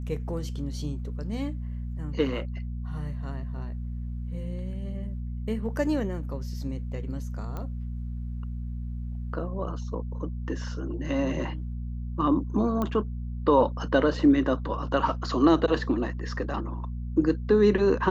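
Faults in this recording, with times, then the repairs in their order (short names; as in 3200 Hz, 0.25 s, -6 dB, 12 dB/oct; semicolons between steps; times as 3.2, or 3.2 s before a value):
hum 60 Hz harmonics 4 -33 dBFS
7.57 pop -23 dBFS
12.82 pop -17 dBFS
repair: de-click; de-hum 60 Hz, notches 4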